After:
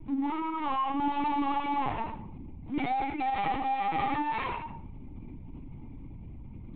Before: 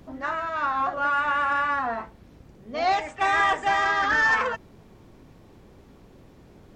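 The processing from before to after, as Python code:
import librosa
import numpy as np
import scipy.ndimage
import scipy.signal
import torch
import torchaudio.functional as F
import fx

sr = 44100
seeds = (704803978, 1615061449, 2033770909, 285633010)

p1 = fx.peak_eq(x, sr, hz=160.0, db=-8.0, octaves=0.77)
p2 = fx.leveller(p1, sr, passes=3)
p3 = fx.vowel_filter(p2, sr, vowel='u')
p4 = fx.add_hum(p3, sr, base_hz=60, snr_db=11)
p5 = np.where(np.abs(p4) >= 10.0 ** (-37.0 / 20.0), p4, 0.0)
p6 = p4 + F.gain(torch.from_numpy(p5), -8.0).numpy()
p7 = fx.cheby_harmonics(p6, sr, harmonics=(3, 5), levels_db=(-7, -12), full_scale_db=-16.5)
p8 = p7 + fx.echo_single(p7, sr, ms=89, db=-6.5, dry=0)
p9 = fx.room_shoebox(p8, sr, seeds[0], volume_m3=730.0, walls='furnished', distance_m=2.1)
y = fx.lpc_vocoder(p9, sr, seeds[1], excitation='pitch_kept', order=16)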